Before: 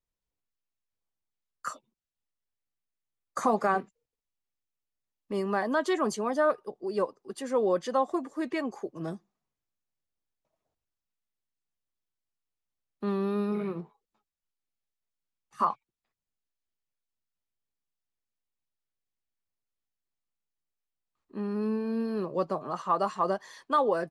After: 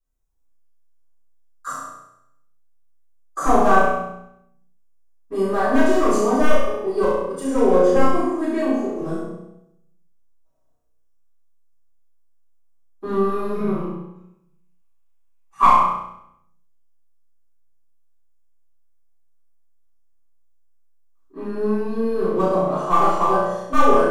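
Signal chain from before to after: one-sided fold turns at -20 dBFS; band shelf 2900 Hz -8.5 dB; in parallel at -6 dB: crossover distortion -44.5 dBFS; 13.79–15.68 on the sum: fifteen-band EQ 400 Hz -5 dB, 1000 Hz +8 dB, 2500 Hz +10 dB; on a send: flutter echo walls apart 5.7 m, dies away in 0.73 s; on the sum: shoebox room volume 85 m³, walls mixed, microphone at 3.7 m; gain -8.5 dB

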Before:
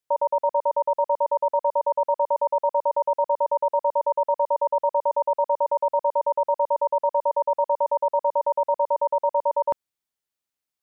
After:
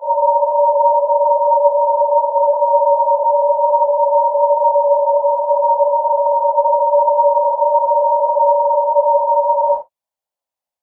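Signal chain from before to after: phase scrambler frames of 0.2 s; band shelf 720 Hz +13.5 dB 1.2 oct; gain -3.5 dB

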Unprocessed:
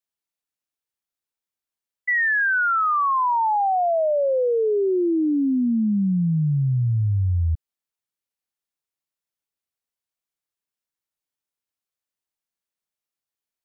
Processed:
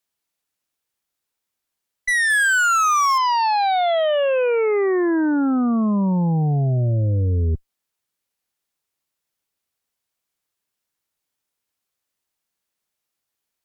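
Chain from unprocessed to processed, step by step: 2.3–3.18 zero-crossing step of -34.5 dBFS; added harmonics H 2 -18 dB, 5 -14 dB, 6 -30 dB, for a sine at -16.5 dBFS; gain +2.5 dB

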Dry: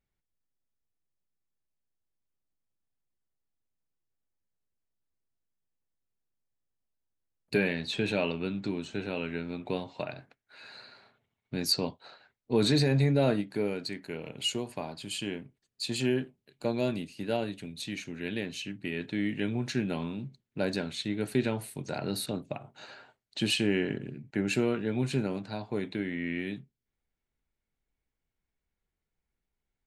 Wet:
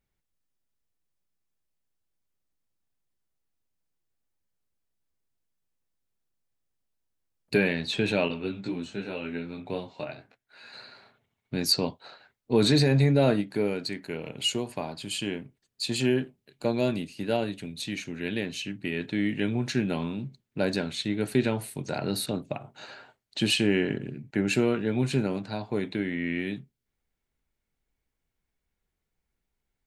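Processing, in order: 8.28–10.73 detuned doubles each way 13 cents; gain +3.5 dB

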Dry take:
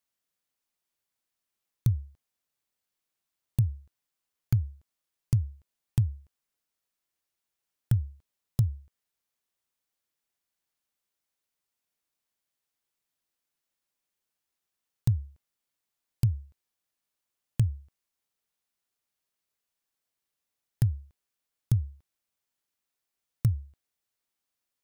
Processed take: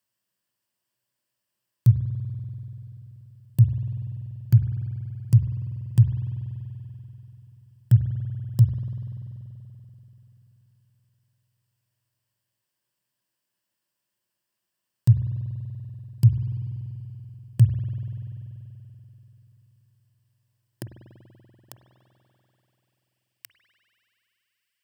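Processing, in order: in parallel at 0 dB: limiter -21.5 dBFS, peak gain reduction 8.5 dB; on the sum: ripple EQ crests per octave 1.3, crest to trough 7 dB; high-pass sweep 120 Hz -> 2300 Hz, 19.9–22.77; spring tank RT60 3.6 s, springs 48 ms, chirp 65 ms, DRR 6 dB; gain -3.5 dB

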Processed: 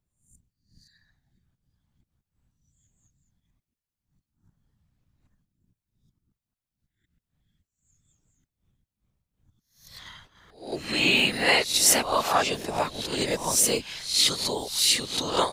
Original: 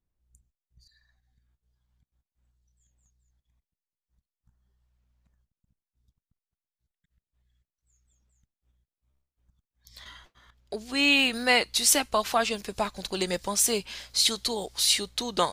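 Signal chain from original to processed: spectral swells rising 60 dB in 0.45 s; whisperiser

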